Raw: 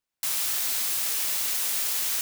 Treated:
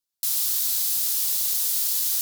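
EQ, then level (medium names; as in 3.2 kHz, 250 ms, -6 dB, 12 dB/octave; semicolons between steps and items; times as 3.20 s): resonant high shelf 3.1 kHz +8 dB, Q 1.5; peaking EQ 14 kHz +6 dB 0.74 oct; -8.0 dB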